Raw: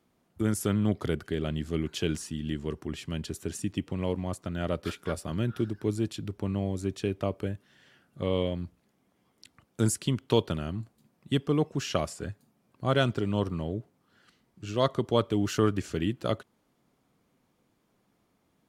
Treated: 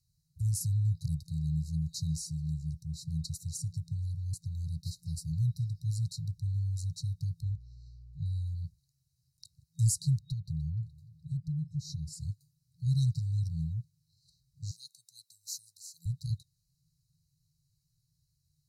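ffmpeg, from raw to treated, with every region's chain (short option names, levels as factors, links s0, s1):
-filter_complex "[0:a]asettb=1/sr,asplit=3[s0][s1][s2];[s0]atrim=end=7.424[s3];[s1]atrim=start=7.42:end=8.26,asetpts=PTS-STARTPTS,afade=t=in:d=0.004:c=qsin,afade=t=out:st=0.836:d=0.004:c=qsin,lowpass=4800,aeval=exprs='val(0)+0.00282*(sin(2*PI*60*n/s)+sin(2*PI*2*60*n/s)/2+sin(2*PI*3*60*n/s)/3+sin(2*PI*4*60*n/s)/4+sin(2*PI*5*60*n/s)/5)':c=same[s4];[s2]atrim=start=8.256[s5];[s3][s4]acrossfade=d=0.004:c1=hsin:c2=qsin[s6];[s6][s5]acrossfade=d=0.004:c1=qsin:c2=hsin,asettb=1/sr,asplit=3[s7][s8][s9];[s7]atrim=end=10.194[s10];[s8]atrim=start=10.19:end=12.13,asetpts=PTS-STARTPTS,afade=t=in:d=0.004:c=qsin,afade=t=out:st=1.936:d=0.004:c=qsin,bass=f=250:g=8,treble=f=4000:g=-7,acompressor=threshold=0.02:ratio=3:attack=3.2:release=140:knee=1:detection=peak,aecho=1:1:298|596|894:0.0891|0.0383|0.0165,atrim=end_sample=85554[s11];[s9]atrim=start=12.126[s12];[s10][s11]acrossfade=d=0.004:c1=hsin:c2=qsin[s13];[s13][s12]acrossfade=d=0.004:c1=qsin:c2=hsin,asettb=1/sr,asplit=3[s14][s15][s16];[s14]atrim=end=14.714[s17];[s15]atrim=start=14.71:end=16.06,asetpts=PTS-STARTPTS,afade=t=in:d=0.004:c=qsin,afade=t=out:st=1.346:d=0.004:c=qsin,highpass=f=450:p=1,aderivative,aecho=1:1:2.2:0.41,atrim=end_sample=59535[s18];[s16]atrim=start=16.056[s19];[s17][s18]acrossfade=d=0.004:c1=hsin:c2=qsin[s20];[s20][s19]acrossfade=d=0.004:c1=qsin:c2=hsin,afftfilt=real='re*(1-between(b*sr/4096,170,3800))':imag='im*(1-between(b*sr/4096,170,3800))':win_size=4096:overlap=0.75,highshelf=f=8000:g=-6,volume=1.41"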